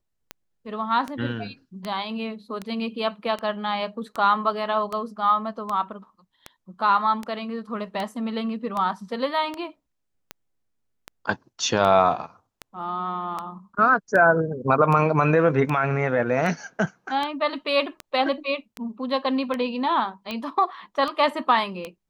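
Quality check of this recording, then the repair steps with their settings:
scratch tick 78 rpm −16 dBFS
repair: click removal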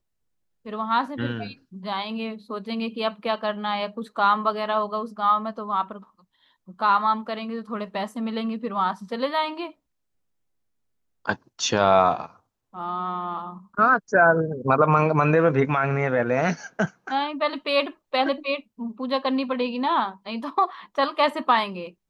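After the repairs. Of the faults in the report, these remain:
none of them is left

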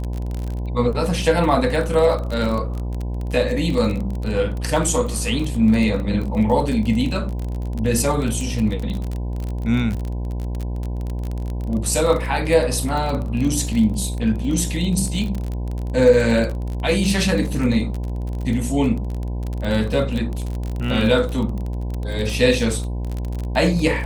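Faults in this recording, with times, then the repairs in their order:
mains buzz 60 Hz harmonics 17 −25 dBFS
surface crackle 30 per second −24 dBFS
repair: click removal
hum removal 60 Hz, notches 17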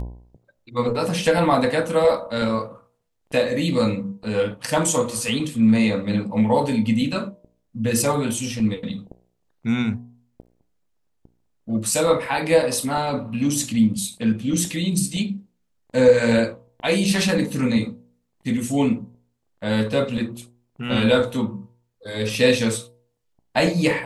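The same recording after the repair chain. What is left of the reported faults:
none of them is left

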